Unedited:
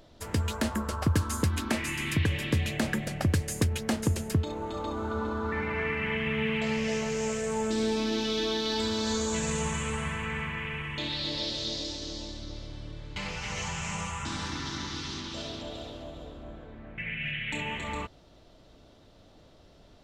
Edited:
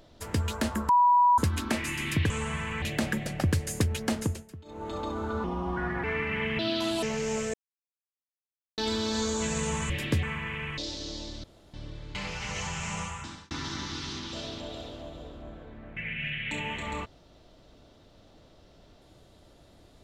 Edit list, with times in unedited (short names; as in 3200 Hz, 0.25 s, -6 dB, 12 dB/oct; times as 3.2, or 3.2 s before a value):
0.89–1.38 bleep 976 Hz -17 dBFS
2.3–2.63 swap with 9.82–10.34
4–4.72 dip -18.5 dB, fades 0.27 s
5.25–5.74 speed 82%
6.29–6.95 speed 150%
7.46–8.7 mute
10.89–11.79 cut
12.45–12.75 room tone
14.03–14.52 fade out